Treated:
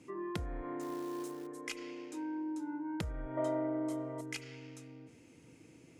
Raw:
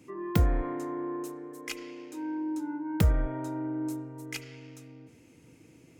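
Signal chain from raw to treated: low-pass 11 kHz 24 dB/octave; bass shelf 130 Hz -4 dB; compression 6:1, threshold -35 dBFS, peak gain reduction 14 dB; 0.81–1.47 s: short-mantissa float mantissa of 2-bit; 3.37–4.21 s: small resonant body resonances 620/1100/2000/3100 Hz, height 17 dB, ringing for 25 ms; trim -1.5 dB

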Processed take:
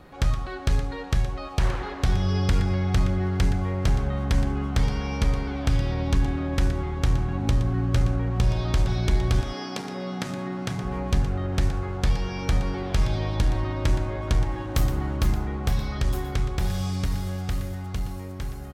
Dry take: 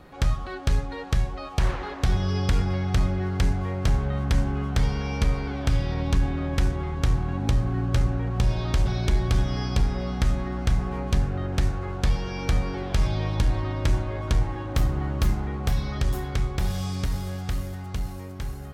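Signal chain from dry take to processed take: 9.40–10.83 s: high-pass 270 Hz -> 110 Hz 24 dB/octave; 14.51–15.17 s: treble shelf 6.2 kHz +7 dB; delay 119 ms -12 dB

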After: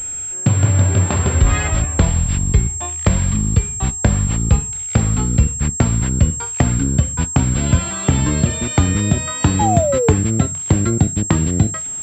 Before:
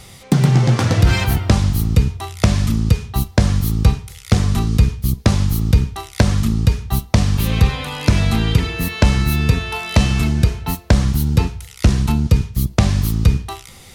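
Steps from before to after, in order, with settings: gliding tape speed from 67% -> 165%; painted sound fall, 9.59–10.13 s, 420–870 Hz -16 dBFS; class-D stage that switches slowly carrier 7.5 kHz; trim -1 dB

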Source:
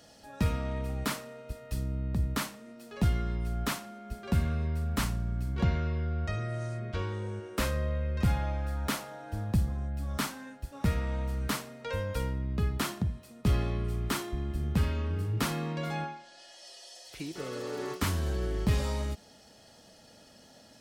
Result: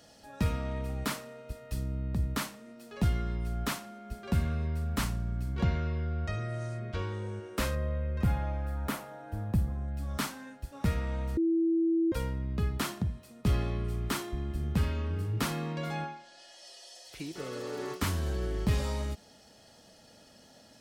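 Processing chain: 7.75–9.88 s: peaking EQ 5.1 kHz -7.5 dB 2.1 oct; 11.37–12.12 s: bleep 330 Hz -22.5 dBFS; trim -1 dB

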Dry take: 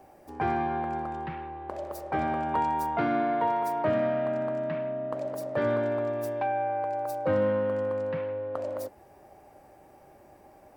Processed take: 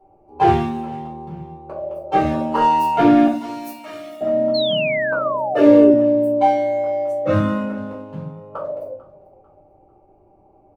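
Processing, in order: local Wiener filter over 25 samples; 6.50–7.31 s: low-pass 9.1 kHz 12 dB/octave; spectral noise reduction 13 dB; 3.26–4.21 s: differentiator; feedback delay 445 ms, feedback 36%, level -21 dB; simulated room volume 200 m³, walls furnished, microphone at 4.3 m; 4.54–5.91 s: painted sound fall 380–4400 Hz -30 dBFS; 5.54–5.94 s: resonant low shelf 240 Hz -8.5 dB, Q 3; trim +5 dB

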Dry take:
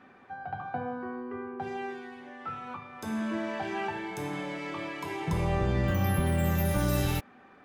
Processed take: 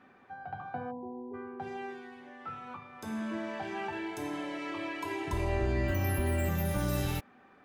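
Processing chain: 0.91–1.34 s: spectral selection erased 1–11 kHz; 3.92–6.49 s: comb 3 ms, depth 82%; trim -4 dB

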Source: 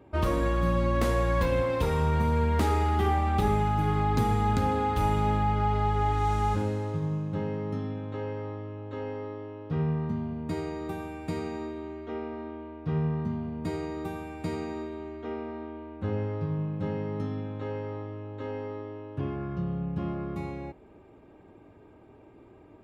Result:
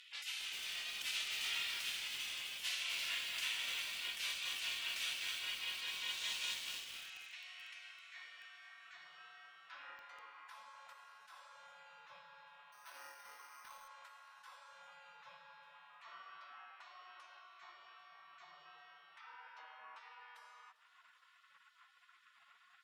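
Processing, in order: tone controls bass -10 dB, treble +8 dB; spectral gate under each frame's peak -30 dB weak; upward compressor, threshold -57 dBFS; band-pass sweep 2.8 kHz -> 1.1 kHz, 6.86–10.20 s; feedback echo behind a high-pass 397 ms, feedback 70%, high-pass 5.2 kHz, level -17 dB; on a send at -16 dB: reverberation RT60 3.6 s, pre-delay 50 ms; 12.72–13.88 s: on the sum: careless resampling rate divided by 6×, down none, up hold; bit-crushed delay 258 ms, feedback 35%, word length 10-bit, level -4 dB; trim +13 dB

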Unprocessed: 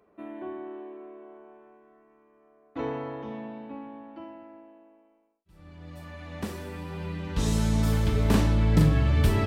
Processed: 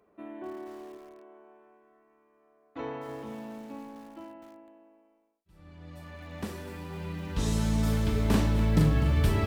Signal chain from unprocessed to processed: 0.97–3.09 s: bass shelf 410 Hz -5.5 dB; bit-crushed delay 250 ms, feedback 55%, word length 7-bit, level -12.5 dB; trim -2.5 dB

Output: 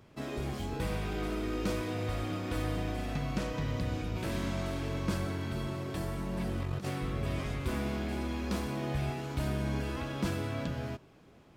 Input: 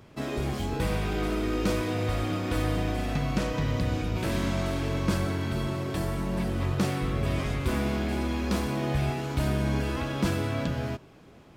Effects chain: 6.41–6.89 s: compressor with a negative ratio -28 dBFS, ratio -0.5; trim -6 dB

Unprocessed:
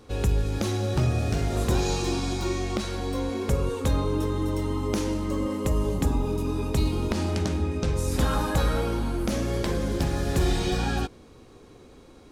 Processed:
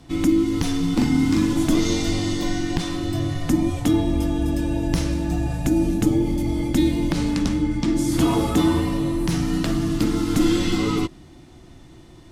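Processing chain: frequency shift -380 Hz; 0.95–1.53 s: doubling 41 ms -2.5 dB; trim +4.5 dB

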